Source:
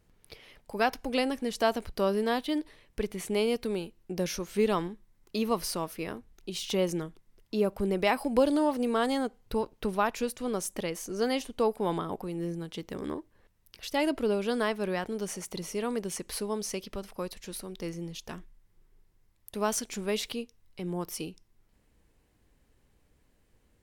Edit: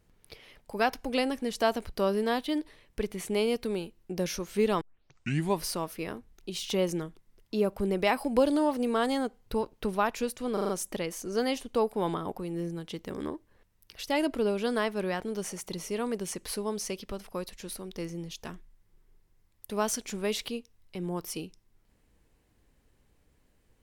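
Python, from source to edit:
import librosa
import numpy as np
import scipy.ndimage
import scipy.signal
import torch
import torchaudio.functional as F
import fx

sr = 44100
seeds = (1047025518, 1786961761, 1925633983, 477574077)

y = fx.edit(x, sr, fx.tape_start(start_s=4.81, length_s=0.82),
    fx.stutter(start_s=10.53, slice_s=0.04, count=5), tone=tone)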